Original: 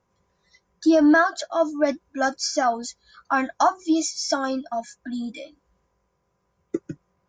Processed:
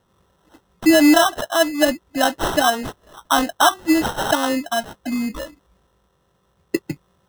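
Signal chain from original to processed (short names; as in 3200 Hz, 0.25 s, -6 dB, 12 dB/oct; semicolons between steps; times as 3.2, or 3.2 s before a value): in parallel at -1.5 dB: compressor, threshold -29 dBFS, peak gain reduction 15 dB; on the sum: sample-and-hold 19×; gain +2.5 dB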